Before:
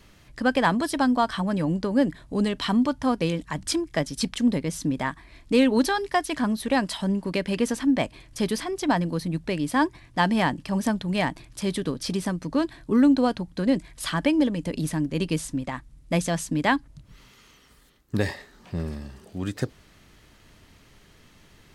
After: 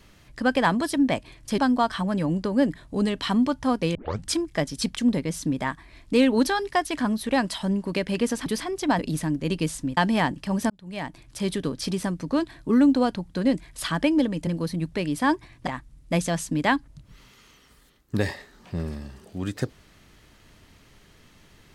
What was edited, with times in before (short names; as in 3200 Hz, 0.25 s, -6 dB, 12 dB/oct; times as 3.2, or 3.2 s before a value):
3.34 tape start 0.29 s
7.85–8.46 move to 0.97
8.99–10.19 swap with 14.69–15.67
10.92–11.67 fade in linear